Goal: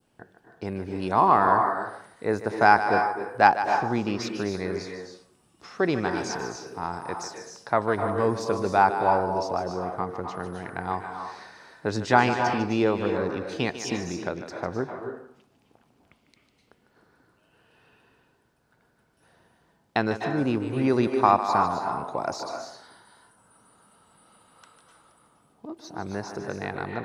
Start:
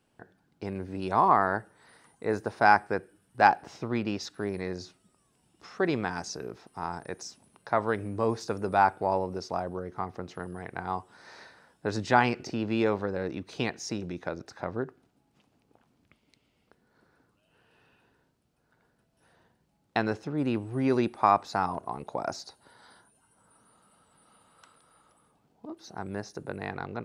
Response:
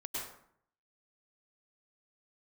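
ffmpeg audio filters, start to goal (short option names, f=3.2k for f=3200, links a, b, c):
-filter_complex "[0:a]asplit=2[a][b];[1:a]atrim=start_sample=2205,lowshelf=f=210:g=-11,adelay=150[c];[b][c]afir=irnorm=-1:irlink=0,volume=-4.5dB[d];[a][d]amix=inputs=2:normalize=0,adynamicequalizer=threshold=0.0112:dfrequency=2200:dqfactor=1.1:tfrequency=2200:tqfactor=1.1:attack=5:release=100:ratio=0.375:range=2.5:mode=cutabove:tftype=bell,volume=3dB"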